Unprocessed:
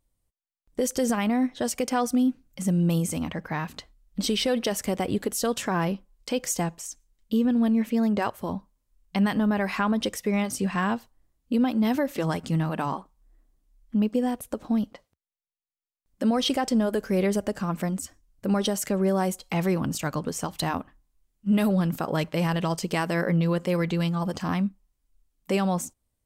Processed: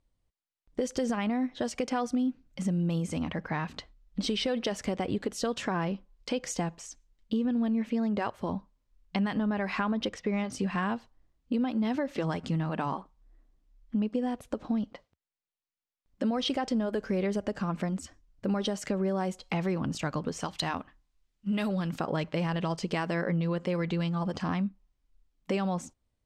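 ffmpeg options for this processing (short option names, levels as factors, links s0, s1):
-filter_complex "[0:a]asettb=1/sr,asplit=3[s0][s1][s2];[s0]atrim=end=9.934[s3];[s1]atrim=start=9.93:end=10.52,asetpts=PTS-STARTPTS,afade=t=in:d=0.004:c=qsin,afade=t=out:st=0.586:d=0.004:c=qsin,adynamicsmooth=sensitivity=5:basefreq=4400[s4];[s2]atrim=start=10.516[s5];[s3][s4]acrossfade=d=0.004:c1=hsin:c2=qsin[s6];[s6][s5]acrossfade=d=0.004:c1=qsin:c2=hsin,asettb=1/sr,asplit=3[s7][s8][s9];[s7]atrim=end=20.404[s10];[s8]atrim=start=20.4:end=22,asetpts=PTS-STARTPTS,afade=t=in:d=0.004:c=qsin,afade=t=out:st=1.596:d=0.004:c=qsin,tiltshelf=f=1300:g=-4[s11];[s9]atrim=start=21.996[s12];[s10][s11]acrossfade=d=0.004:c1=hsin:c2=qsin[s13];[s13][s12]acrossfade=d=0.004:c1=qsin:c2=hsin,lowpass=5000,acompressor=threshold=0.0398:ratio=2.5"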